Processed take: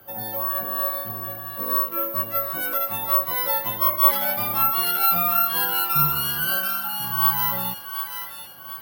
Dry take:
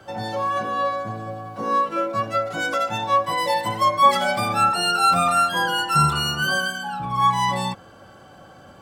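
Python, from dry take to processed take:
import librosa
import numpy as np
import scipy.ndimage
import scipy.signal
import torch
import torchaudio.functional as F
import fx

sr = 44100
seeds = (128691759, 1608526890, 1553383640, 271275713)

p1 = x + fx.echo_wet_highpass(x, sr, ms=734, feedback_pct=46, hz=1500.0, wet_db=-4.0, dry=0)
p2 = (np.kron(scipy.signal.resample_poly(p1, 1, 3), np.eye(3)[0]) * 3)[:len(p1)]
y = p2 * 10.0 ** (-7.0 / 20.0)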